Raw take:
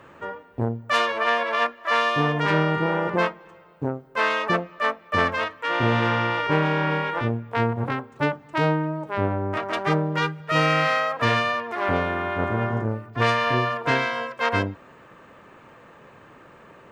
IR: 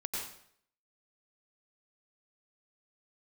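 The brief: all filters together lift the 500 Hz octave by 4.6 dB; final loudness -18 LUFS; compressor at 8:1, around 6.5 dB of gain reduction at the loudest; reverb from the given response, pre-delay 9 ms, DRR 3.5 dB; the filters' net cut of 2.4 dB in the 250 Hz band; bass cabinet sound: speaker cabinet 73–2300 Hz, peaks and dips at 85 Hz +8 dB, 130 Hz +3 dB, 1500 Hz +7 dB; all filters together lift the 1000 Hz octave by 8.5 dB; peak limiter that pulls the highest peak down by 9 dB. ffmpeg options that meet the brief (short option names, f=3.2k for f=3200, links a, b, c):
-filter_complex "[0:a]equalizer=f=250:t=o:g=-6.5,equalizer=f=500:t=o:g=4.5,equalizer=f=1k:t=o:g=8,acompressor=threshold=-18dB:ratio=8,alimiter=limit=-16dB:level=0:latency=1,asplit=2[a][b];[1:a]atrim=start_sample=2205,adelay=9[c];[b][c]afir=irnorm=-1:irlink=0,volume=-6dB[d];[a][d]amix=inputs=2:normalize=0,highpass=f=73:w=0.5412,highpass=f=73:w=1.3066,equalizer=f=85:t=q:w=4:g=8,equalizer=f=130:t=q:w=4:g=3,equalizer=f=1.5k:t=q:w=4:g=7,lowpass=f=2.3k:w=0.5412,lowpass=f=2.3k:w=1.3066,volume=5.5dB"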